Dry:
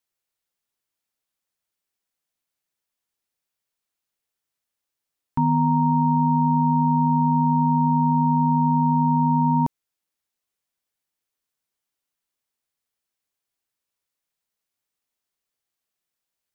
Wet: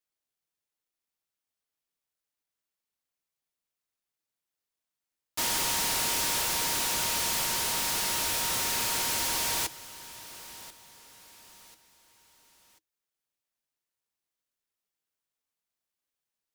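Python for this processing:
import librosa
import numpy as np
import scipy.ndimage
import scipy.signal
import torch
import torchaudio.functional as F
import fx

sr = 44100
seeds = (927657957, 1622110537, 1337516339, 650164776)

y = scipy.signal.sosfilt(scipy.signal.cheby1(6, 3, 310.0, 'highpass', fs=sr, output='sos'), x)
y = fx.tilt_eq(y, sr, slope=2.0)
y = y + 0.65 * np.pad(y, (int(6.4 * sr / 1000.0), 0))[:len(y)]
y = fx.echo_feedback(y, sr, ms=1039, feedback_pct=34, wet_db=-15.5)
y = fx.noise_mod_delay(y, sr, seeds[0], noise_hz=4900.0, depth_ms=0.29)
y = y * 10.0 ** (-8.0 / 20.0)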